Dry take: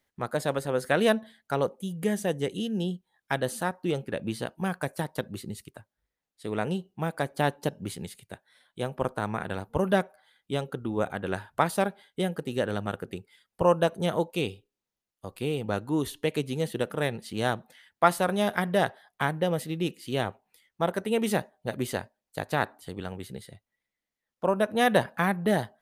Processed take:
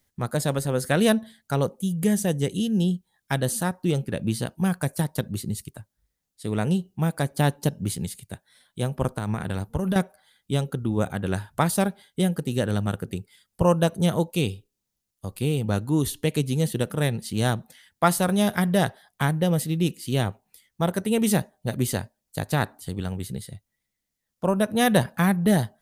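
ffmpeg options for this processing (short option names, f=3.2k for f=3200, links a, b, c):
-filter_complex "[0:a]asettb=1/sr,asplit=3[a][b][c];[a]atrim=end=9.154[d];[b]atrim=start=9.15:end=9.96,asetpts=PTS-STARTPTS,afade=t=in:d=0.004:c=qsin,afade=t=out:st=0.806:d=0.004:c=qsin,acompressor=threshold=-26dB:ratio=6:attack=3.2:release=140:knee=1:detection=peak[e];[c]atrim=start=9.956[f];[d][e]acrossfade=d=0.004:c1=hsin:c2=qsin[g];[g][f]acrossfade=d=0.004:c1=qsin:c2=hsin,bass=f=250:g=11,treble=f=4k:g=10"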